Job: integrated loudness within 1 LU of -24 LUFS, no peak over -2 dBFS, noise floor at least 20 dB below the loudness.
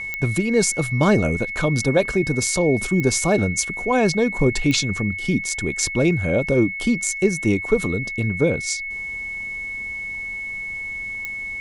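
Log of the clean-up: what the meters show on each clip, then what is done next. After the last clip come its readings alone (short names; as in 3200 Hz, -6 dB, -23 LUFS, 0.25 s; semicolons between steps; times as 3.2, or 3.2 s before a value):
clicks 4; steady tone 2200 Hz; tone level -27 dBFS; loudness -21.0 LUFS; peak -5.0 dBFS; loudness target -24.0 LUFS
-> de-click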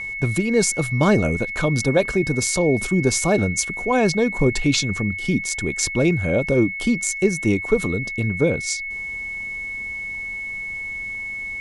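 clicks 0; steady tone 2200 Hz; tone level -27 dBFS
-> notch 2200 Hz, Q 30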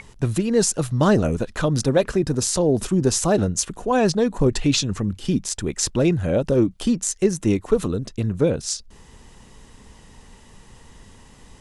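steady tone none; loudness -21.5 LUFS; peak -5.0 dBFS; loudness target -24.0 LUFS
-> gain -2.5 dB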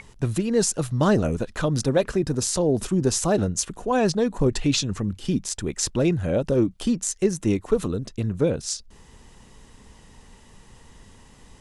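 loudness -24.0 LUFS; peak -7.5 dBFS; noise floor -51 dBFS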